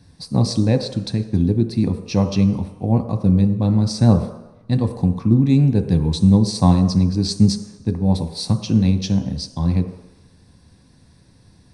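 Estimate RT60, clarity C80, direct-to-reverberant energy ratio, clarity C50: 1.0 s, 11.5 dB, 6.0 dB, 10.0 dB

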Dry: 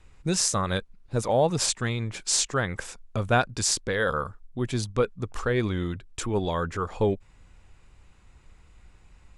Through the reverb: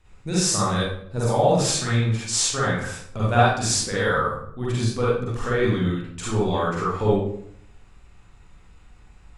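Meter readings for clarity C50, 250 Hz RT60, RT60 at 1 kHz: −3.0 dB, 0.75 s, 0.60 s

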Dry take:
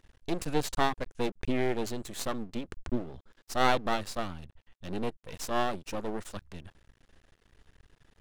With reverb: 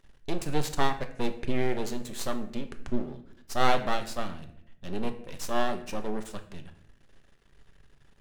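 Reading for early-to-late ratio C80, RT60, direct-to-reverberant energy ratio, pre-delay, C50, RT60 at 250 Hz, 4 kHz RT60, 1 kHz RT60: 15.0 dB, 0.75 s, 7.0 dB, 5 ms, 12.0 dB, 1.1 s, 0.50 s, 0.60 s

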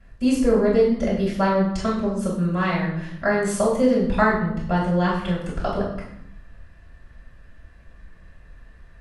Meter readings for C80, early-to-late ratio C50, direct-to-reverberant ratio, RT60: 7.5 dB, 4.0 dB, −7.0 dB, 0.75 s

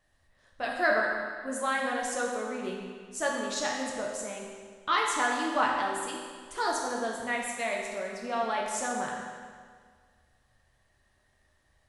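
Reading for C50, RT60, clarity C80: 1.0 dB, 1.8 s, 2.5 dB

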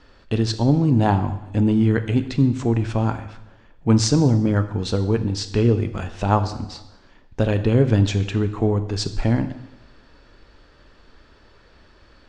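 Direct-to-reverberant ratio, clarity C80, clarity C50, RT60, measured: 9.5 dB, 14.0 dB, 12.5 dB, 0.95 s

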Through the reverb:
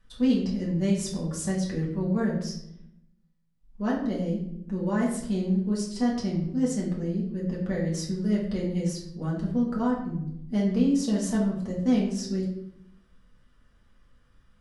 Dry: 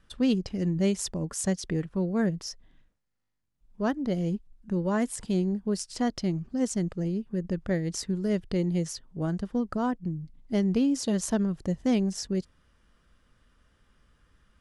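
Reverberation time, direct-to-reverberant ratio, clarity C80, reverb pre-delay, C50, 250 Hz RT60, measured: 0.75 s, −5.0 dB, 8.0 dB, 4 ms, 4.5 dB, 1.1 s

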